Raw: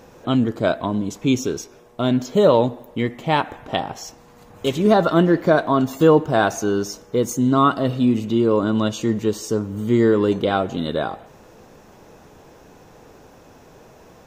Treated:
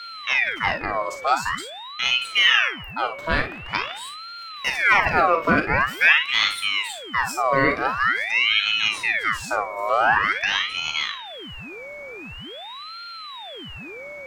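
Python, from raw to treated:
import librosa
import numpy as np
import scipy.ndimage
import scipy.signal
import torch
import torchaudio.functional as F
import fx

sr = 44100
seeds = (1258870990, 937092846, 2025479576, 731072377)

y = fx.room_early_taps(x, sr, ms=(38, 56), db=(-9.0, -9.5))
y = y + 10.0 ** (-30.0 / 20.0) * np.sin(2.0 * np.pi * 1400.0 * np.arange(len(y)) / sr)
y = fx.ring_lfo(y, sr, carrier_hz=1800.0, swing_pct=55, hz=0.46)
y = y * librosa.db_to_amplitude(-1.0)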